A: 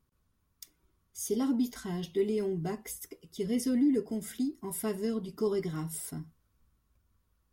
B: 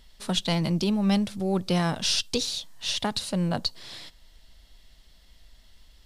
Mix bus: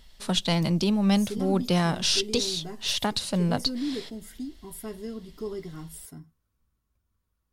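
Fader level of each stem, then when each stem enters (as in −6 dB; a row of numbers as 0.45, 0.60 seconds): −4.5, +1.0 decibels; 0.00, 0.00 seconds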